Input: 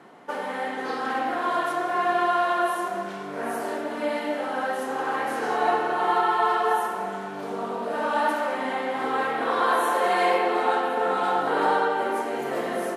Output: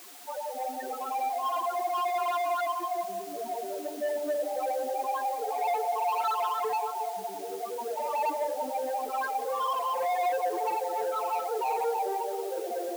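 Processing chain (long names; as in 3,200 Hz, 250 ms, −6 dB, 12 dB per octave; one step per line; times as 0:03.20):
spectral peaks only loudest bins 2
soft clipping −29 dBFS, distortion −12 dB
bucket-brigade delay 180 ms, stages 1,024, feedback 68%, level −8 dB
background noise white −52 dBFS
high-pass filter 330 Hz 12 dB per octave
level +3.5 dB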